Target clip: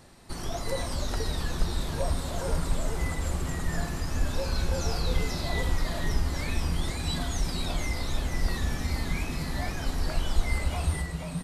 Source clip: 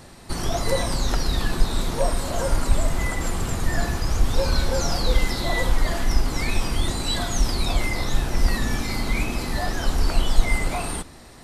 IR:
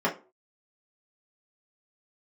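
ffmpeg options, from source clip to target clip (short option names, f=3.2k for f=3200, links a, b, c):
-filter_complex "[0:a]asettb=1/sr,asplit=3[a][b][c];[a]atrim=end=4.104[d];[b]atrim=start=4.1:end=5.47,asetpts=PTS-STARTPTS,afade=t=in:d=0.004:c=qsin,afade=t=out:st=1.366:d=0.004:c=qsin,aeval=exprs='val(0)+0.00631*sin(2*PI*2600*n/s)':c=same[e];[c]atrim=start=5.466[f];[d][e]acrossfade=d=0.004:c1=hsin:c2=qsin[g];[g][f]acrossfade=d=0.004:c1=qsin:c2=hsin,asplit=6[h][i][j][k][l][m];[i]adelay=478,afreqshift=-94,volume=-5dB[n];[j]adelay=956,afreqshift=-188,volume=-12.7dB[o];[k]adelay=1434,afreqshift=-282,volume=-20.5dB[p];[l]adelay=1912,afreqshift=-376,volume=-28.2dB[q];[m]adelay=2390,afreqshift=-470,volume=-36dB[r];[h][n][o][p][q][r]amix=inputs=6:normalize=0,volume=-8.5dB"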